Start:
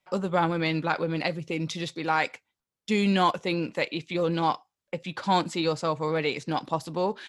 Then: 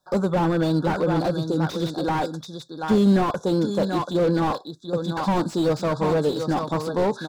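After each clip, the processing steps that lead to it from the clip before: echo 0.733 s -10 dB; FFT band-reject 1700–3400 Hz; slew limiter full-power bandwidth 31 Hz; gain +7 dB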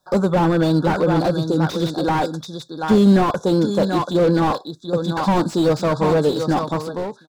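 ending faded out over 0.70 s; gain +4.5 dB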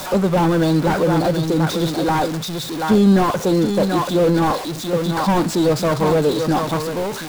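zero-crossing step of -22.5 dBFS; gain -1 dB

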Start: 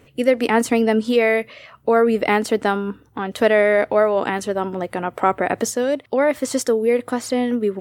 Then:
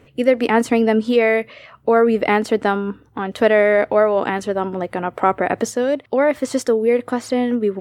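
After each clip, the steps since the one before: high shelf 5500 Hz -9 dB; gain +1.5 dB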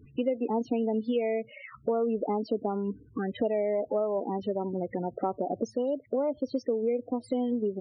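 envelope phaser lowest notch 590 Hz, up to 1700 Hz, full sweep at -15.5 dBFS; loudest bins only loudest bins 16; compressor 3:1, threshold -29 dBFS, peak gain reduction 13.5 dB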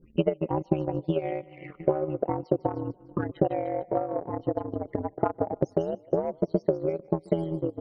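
ring modulator 81 Hz; split-band echo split 430 Hz, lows 0.711 s, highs 0.151 s, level -13 dB; transient shaper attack +10 dB, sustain -10 dB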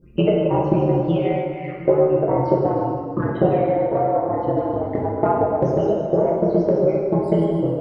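plate-style reverb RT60 1.7 s, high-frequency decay 0.8×, DRR -4.5 dB; gain +3.5 dB

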